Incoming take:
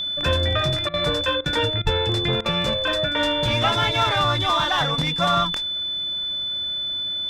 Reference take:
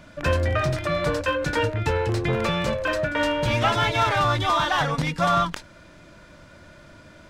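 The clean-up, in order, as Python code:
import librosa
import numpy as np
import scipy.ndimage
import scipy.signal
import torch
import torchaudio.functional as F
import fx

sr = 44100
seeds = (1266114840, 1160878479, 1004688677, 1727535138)

y = fx.notch(x, sr, hz=3500.0, q=30.0)
y = fx.fix_deplosive(y, sr, at_s=(1.83,))
y = fx.fix_interpolate(y, sr, at_s=(0.89, 1.41, 1.82, 2.41), length_ms=46.0)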